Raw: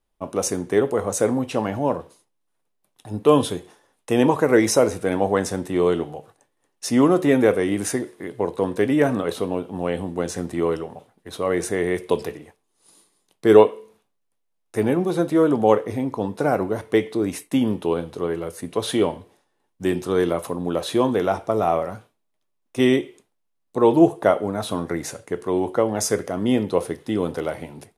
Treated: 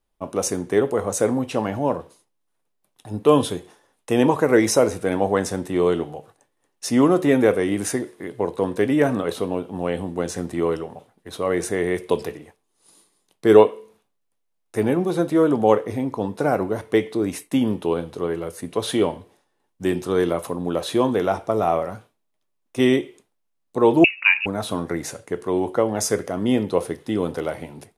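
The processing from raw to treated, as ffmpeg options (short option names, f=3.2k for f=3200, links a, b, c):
-filter_complex "[0:a]asettb=1/sr,asplit=3[a][b][c];[a]atrim=end=24.044[d];[b]atrim=start=24.04:end=24.46,asetpts=PTS-STARTPTS,afade=t=in:d=0.004:c=qsin,afade=t=out:st=0.416:d=0.004:c=qsin,lowpass=f=2.6k:t=q:w=0.5098,lowpass=f=2.6k:t=q:w=0.6013,lowpass=f=2.6k:t=q:w=0.9,lowpass=f=2.6k:t=q:w=2.563,afreqshift=-3000[e];[c]atrim=start=24.456[f];[d][e]acrossfade=d=0.004:c1=hsin:c2=qsin[g];[g][f]acrossfade=d=0.004:c1=qsin:c2=hsin"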